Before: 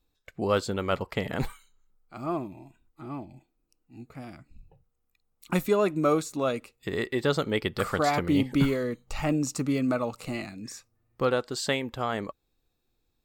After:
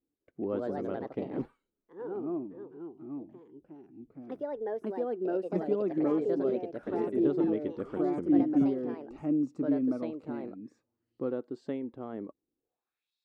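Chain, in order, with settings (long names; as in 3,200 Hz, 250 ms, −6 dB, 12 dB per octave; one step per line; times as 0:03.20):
band-pass filter sweep 300 Hz → 4,100 Hz, 0:12.56–0:13.14
delay with pitch and tempo change per echo 196 ms, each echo +3 semitones, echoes 2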